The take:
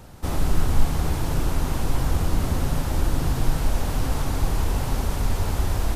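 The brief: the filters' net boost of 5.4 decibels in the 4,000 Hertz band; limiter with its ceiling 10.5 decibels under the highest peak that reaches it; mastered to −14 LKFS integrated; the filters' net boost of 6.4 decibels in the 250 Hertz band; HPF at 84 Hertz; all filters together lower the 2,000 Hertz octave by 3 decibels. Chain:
high-pass filter 84 Hz
parametric band 250 Hz +8.5 dB
parametric band 2,000 Hz −6.5 dB
parametric band 4,000 Hz +8.5 dB
level +17 dB
brickwall limiter −5 dBFS

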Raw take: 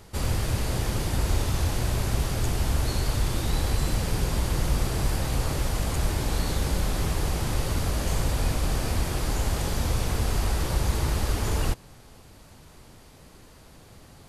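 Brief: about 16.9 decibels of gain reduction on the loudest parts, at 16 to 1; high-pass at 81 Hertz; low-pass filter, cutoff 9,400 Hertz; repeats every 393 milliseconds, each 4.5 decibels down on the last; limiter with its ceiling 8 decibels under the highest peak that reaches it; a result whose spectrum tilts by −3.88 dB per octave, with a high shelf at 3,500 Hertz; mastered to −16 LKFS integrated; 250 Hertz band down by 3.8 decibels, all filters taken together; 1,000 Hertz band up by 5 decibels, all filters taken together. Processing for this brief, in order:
high-pass filter 81 Hz
low-pass filter 9,400 Hz
parametric band 250 Hz −6 dB
parametric band 1,000 Hz +6 dB
high-shelf EQ 3,500 Hz +7.5 dB
downward compressor 16 to 1, threshold −41 dBFS
brickwall limiter −37 dBFS
repeating echo 393 ms, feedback 60%, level −4.5 dB
level +28.5 dB

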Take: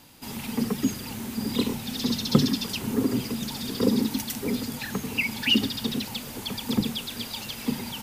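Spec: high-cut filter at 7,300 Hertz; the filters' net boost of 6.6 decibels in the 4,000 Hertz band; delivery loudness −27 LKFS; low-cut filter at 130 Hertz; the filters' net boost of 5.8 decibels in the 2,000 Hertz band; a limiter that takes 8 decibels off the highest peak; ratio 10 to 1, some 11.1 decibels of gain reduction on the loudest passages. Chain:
high-pass filter 130 Hz
low-pass filter 7,300 Hz
parametric band 2,000 Hz +4.5 dB
parametric band 4,000 Hz +7.5 dB
downward compressor 10 to 1, threshold −24 dBFS
level +3.5 dB
brickwall limiter −17 dBFS

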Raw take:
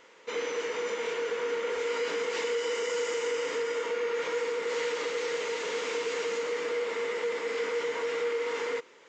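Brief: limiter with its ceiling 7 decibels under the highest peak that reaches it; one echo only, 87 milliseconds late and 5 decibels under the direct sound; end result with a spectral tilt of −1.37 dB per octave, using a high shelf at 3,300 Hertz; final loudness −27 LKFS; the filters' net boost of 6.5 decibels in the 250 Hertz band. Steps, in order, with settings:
parametric band 250 Hz +8.5 dB
high-shelf EQ 3,300 Hz +4.5 dB
brickwall limiter −24.5 dBFS
single-tap delay 87 ms −5 dB
level +4.5 dB

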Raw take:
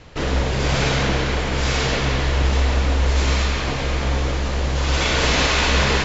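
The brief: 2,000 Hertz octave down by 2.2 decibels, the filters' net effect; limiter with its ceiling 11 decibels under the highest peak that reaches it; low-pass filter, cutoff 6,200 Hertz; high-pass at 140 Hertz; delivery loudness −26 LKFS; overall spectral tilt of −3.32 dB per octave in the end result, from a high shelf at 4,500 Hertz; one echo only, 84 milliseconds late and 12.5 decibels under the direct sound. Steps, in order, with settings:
high-pass filter 140 Hz
low-pass filter 6,200 Hz
parametric band 2,000 Hz −4.5 dB
high-shelf EQ 4,500 Hz +8.5 dB
brickwall limiter −16.5 dBFS
single-tap delay 84 ms −12.5 dB
level −1 dB

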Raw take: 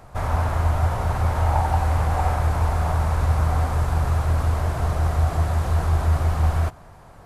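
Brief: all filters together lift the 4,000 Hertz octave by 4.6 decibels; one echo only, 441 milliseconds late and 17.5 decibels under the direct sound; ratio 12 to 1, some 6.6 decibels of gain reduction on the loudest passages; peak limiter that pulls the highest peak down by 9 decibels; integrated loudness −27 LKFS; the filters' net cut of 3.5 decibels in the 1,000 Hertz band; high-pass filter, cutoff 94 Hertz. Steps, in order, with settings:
high-pass filter 94 Hz
parametric band 1,000 Hz −5 dB
parametric band 4,000 Hz +6 dB
downward compressor 12 to 1, threshold −26 dBFS
brickwall limiter −27 dBFS
single-tap delay 441 ms −17.5 dB
level +8.5 dB

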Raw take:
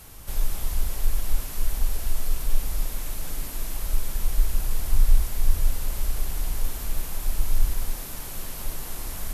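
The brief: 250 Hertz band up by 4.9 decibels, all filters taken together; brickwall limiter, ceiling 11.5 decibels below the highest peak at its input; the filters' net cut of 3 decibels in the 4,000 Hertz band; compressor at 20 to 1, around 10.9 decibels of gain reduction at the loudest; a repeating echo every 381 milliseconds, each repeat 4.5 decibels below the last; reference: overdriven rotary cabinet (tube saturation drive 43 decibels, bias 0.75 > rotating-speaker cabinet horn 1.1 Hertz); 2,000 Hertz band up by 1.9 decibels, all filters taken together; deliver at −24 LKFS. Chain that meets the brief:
parametric band 250 Hz +6.5 dB
parametric band 2,000 Hz +3.5 dB
parametric band 4,000 Hz −5 dB
downward compressor 20 to 1, threshold −21 dBFS
brickwall limiter −27.5 dBFS
repeating echo 381 ms, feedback 60%, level −4.5 dB
tube saturation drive 43 dB, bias 0.75
rotating-speaker cabinet horn 1.1 Hz
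level +28 dB

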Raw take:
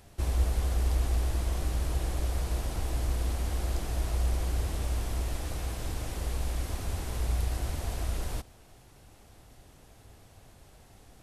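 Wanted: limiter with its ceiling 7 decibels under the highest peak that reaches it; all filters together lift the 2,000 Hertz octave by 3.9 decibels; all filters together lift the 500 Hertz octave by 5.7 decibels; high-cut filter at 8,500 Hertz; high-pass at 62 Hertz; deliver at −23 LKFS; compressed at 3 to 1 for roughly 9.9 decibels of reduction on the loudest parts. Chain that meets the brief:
high-pass filter 62 Hz
low-pass filter 8,500 Hz
parametric band 500 Hz +7 dB
parametric band 2,000 Hz +4.5 dB
downward compressor 3 to 1, threshold −37 dBFS
level +20.5 dB
brickwall limiter −13 dBFS

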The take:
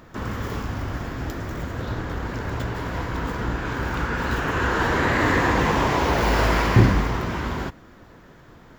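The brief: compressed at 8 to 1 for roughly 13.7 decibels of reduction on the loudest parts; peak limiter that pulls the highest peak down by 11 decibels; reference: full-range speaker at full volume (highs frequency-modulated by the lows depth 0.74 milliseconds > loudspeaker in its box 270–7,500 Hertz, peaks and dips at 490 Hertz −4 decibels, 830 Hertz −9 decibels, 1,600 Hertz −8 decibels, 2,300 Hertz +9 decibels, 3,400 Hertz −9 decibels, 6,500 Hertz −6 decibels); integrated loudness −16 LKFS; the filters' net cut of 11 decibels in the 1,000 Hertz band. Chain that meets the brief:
parametric band 1,000 Hz −8.5 dB
downward compressor 8 to 1, threshold −24 dBFS
brickwall limiter −23.5 dBFS
highs frequency-modulated by the lows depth 0.74 ms
loudspeaker in its box 270–7,500 Hz, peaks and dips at 490 Hz −4 dB, 830 Hz −9 dB, 1,600 Hz −8 dB, 2,300 Hz +9 dB, 3,400 Hz −9 dB, 6,500 Hz −6 dB
level +21 dB

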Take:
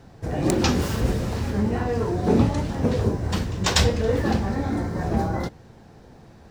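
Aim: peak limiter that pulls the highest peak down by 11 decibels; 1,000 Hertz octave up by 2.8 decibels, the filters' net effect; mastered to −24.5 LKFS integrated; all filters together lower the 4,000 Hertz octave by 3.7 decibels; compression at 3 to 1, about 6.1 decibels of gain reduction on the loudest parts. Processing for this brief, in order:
parametric band 1,000 Hz +4 dB
parametric band 4,000 Hz −5 dB
downward compressor 3 to 1, threshold −22 dBFS
level +4 dB
brickwall limiter −15 dBFS

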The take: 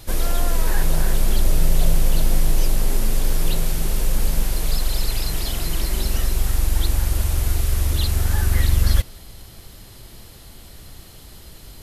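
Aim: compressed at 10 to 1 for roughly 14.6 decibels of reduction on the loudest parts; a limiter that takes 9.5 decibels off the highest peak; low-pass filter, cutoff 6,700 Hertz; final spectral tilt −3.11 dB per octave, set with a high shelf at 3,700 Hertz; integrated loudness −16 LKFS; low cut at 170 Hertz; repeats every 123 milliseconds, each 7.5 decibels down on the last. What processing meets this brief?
high-pass filter 170 Hz
low-pass filter 6,700 Hz
high-shelf EQ 3,700 Hz +6.5 dB
downward compressor 10 to 1, threshold −39 dBFS
brickwall limiter −38.5 dBFS
repeating echo 123 ms, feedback 42%, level −7.5 dB
level +29.5 dB

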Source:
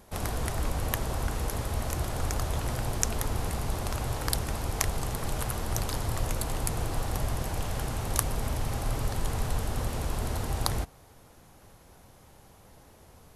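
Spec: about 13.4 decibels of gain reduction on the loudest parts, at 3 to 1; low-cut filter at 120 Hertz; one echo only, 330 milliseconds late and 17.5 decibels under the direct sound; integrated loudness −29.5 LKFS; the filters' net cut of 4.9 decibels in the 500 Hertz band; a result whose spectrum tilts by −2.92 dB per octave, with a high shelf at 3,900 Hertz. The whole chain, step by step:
high-pass filter 120 Hz
parametric band 500 Hz −6.5 dB
high-shelf EQ 3,900 Hz +6.5 dB
downward compressor 3 to 1, threshold −38 dBFS
single-tap delay 330 ms −17.5 dB
level +9.5 dB

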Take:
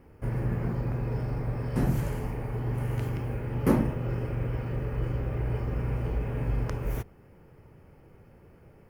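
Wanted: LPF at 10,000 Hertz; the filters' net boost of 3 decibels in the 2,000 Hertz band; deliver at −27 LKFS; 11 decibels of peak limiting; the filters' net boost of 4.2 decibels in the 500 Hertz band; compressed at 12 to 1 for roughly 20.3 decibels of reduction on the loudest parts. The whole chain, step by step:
low-pass filter 10,000 Hz
parametric band 500 Hz +5 dB
parametric band 2,000 Hz +3.5 dB
downward compressor 12 to 1, threshold −36 dBFS
level +18.5 dB
brickwall limiter −17.5 dBFS

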